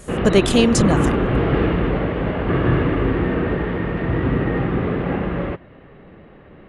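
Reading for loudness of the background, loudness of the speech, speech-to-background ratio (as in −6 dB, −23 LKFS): −20.5 LKFS, −18.0 LKFS, 2.5 dB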